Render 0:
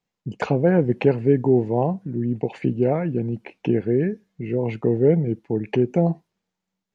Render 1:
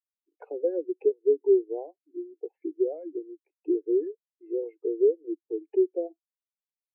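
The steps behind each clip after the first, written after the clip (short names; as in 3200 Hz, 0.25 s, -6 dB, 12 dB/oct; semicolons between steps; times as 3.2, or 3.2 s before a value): steep high-pass 290 Hz 96 dB/oct; compressor 4:1, threshold -23 dBFS, peak gain reduction 9 dB; spectral expander 2.5:1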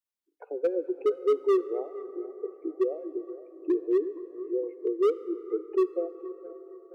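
hard clip -19 dBFS, distortion -13 dB; tape echo 0.468 s, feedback 60%, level -14 dB, low-pass 1100 Hz; plate-style reverb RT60 4.9 s, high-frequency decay 0.3×, DRR 14 dB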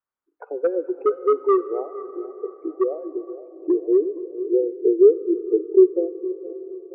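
low-pass sweep 1300 Hz -> 400 Hz, 2.8–4.76; gain +4 dB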